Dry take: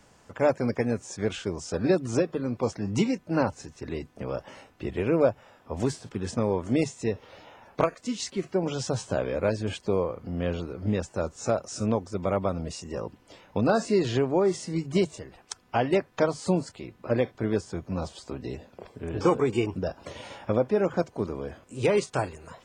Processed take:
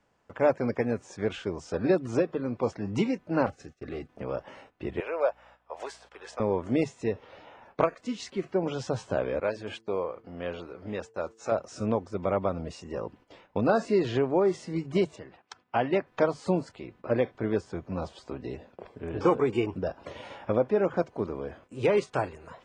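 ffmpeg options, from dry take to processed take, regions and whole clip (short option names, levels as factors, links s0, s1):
-filter_complex "[0:a]asettb=1/sr,asplit=3[s0][s1][s2];[s0]atrim=end=3.464[s3];[s1]atrim=start=3.46:end=4.09,asetpts=PTS-STARTPTS,afade=t=in:d=0.004:c=qsin,afade=t=out:st=0.626:d=0.004:c=qsin,agate=range=0.0224:threshold=0.00631:ratio=3:release=100:detection=peak,asoftclip=type=hard:threshold=0.0355,asuperstop=centerf=950:order=20:qfactor=3.3[s4];[s2]atrim=start=4.086[s5];[s3][s4]acrossfade=d=0.004:c1=hsin:c2=qsin[s6];[s6][s5]acrossfade=d=0.004:c1=qsin:c2=hsin,asettb=1/sr,asplit=3[s7][s8][s9];[s7]atrim=end=5.004[s10];[s8]atrim=start=5:end=6.4,asetpts=PTS-STARTPTS,afade=t=in:d=0.004:c=qsin,afade=t=out:st=1.396:d=0.004:c=qsin,highpass=f=560:w=0.5412,highpass=f=560:w=1.3066,aeval=exprs='val(0)+0.000794*(sin(2*PI*60*n/s)+sin(2*PI*2*60*n/s)/2+sin(2*PI*3*60*n/s)/3+sin(2*PI*4*60*n/s)/4+sin(2*PI*5*60*n/s)/5)':c=same[s11];[s9]atrim=start=6.396[s12];[s10][s11]acrossfade=d=0.004:c1=hsin:c2=qsin[s13];[s13][s12]acrossfade=d=0.004:c1=qsin:c2=hsin,asettb=1/sr,asplit=3[s14][s15][s16];[s14]atrim=end=9.404[s17];[s15]atrim=start=9.4:end=11.52,asetpts=PTS-STARTPTS,afade=t=in:d=0.004:c=qsin,afade=t=out:st=2.116:d=0.004:c=qsin,agate=range=0.0224:threshold=0.00891:ratio=3:release=100:detection=peak,lowshelf=f=310:g=-11.5,bandreject=f=112.2:t=h:w=4,bandreject=f=224.4:t=h:w=4,bandreject=f=336.6:t=h:w=4,bandreject=f=448.8:t=h:w=4[s18];[s16]atrim=start=11.516[s19];[s17][s18]acrossfade=d=0.004:c1=hsin:c2=qsin[s20];[s20][s19]acrossfade=d=0.004:c1=qsin:c2=hsin,asettb=1/sr,asplit=3[s21][s22][s23];[s21]atrim=end=15.164[s24];[s22]atrim=start=15.16:end=16.07,asetpts=PTS-STARTPTS,afade=t=in:d=0.004:c=qsin,afade=t=out:st=0.906:d=0.004:c=qsin,highpass=100,lowpass=5200,equalizer=f=450:t=o:w=0.71:g=-3[s25];[s23]atrim=start=16.066[s26];[s24][s25]acrossfade=d=0.004:c1=hsin:c2=qsin[s27];[s27][s26]acrossfade=d=0.004:c1=qsin:c2=hsin,bass=f=250:g=-4,treble=f=4000:g=-5,agate=range=0.282:threshold=0.00224:ratio=16:detection=peak,highshelf=f=6300:g=-10.5"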